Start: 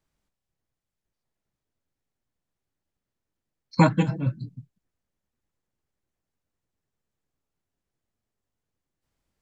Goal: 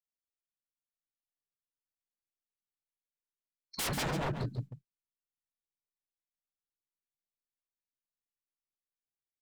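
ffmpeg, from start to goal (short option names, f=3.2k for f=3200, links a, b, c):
-filter_complex "[0:a]agate=range=-33dB:threshold=-39dB:ratio=3:detection=peak,lowshelf=f=250:g=-3,dynaudnorm=f=210:g=5:m=8dB,aeval=exprs='0.0355*(abs(mod(val(0)/0.0355+3,4)-2)-1)':c=same,asplit=2[a][b];[b]aecho=0:1:140:0.376[c];[a][c]amix=inputs=2:normalize=0"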